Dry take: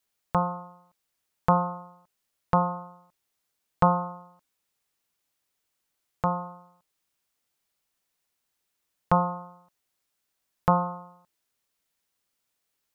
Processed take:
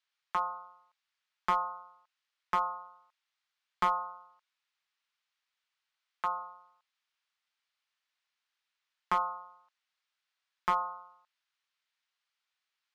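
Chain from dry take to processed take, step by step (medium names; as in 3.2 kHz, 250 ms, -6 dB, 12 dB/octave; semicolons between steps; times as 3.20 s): Butterworth band-pass 2.2 kHz, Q 0.64; one-sided clip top -23 dBFS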